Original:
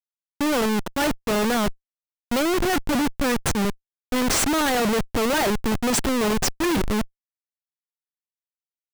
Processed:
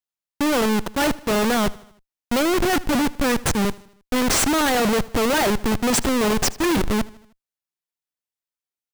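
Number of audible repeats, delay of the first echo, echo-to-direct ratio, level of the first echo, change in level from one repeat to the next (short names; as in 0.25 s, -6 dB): 3, 78 ms, -19.5 dB, -21.0 dB, -5.5 dB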